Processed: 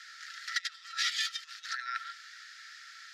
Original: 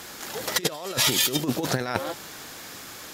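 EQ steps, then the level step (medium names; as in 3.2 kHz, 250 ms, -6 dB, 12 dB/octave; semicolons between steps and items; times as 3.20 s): rippled Chebyshev high-pass 1.3 kHz, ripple 9 dB; tape spacing loss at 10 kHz 23 dB; +4.5 dB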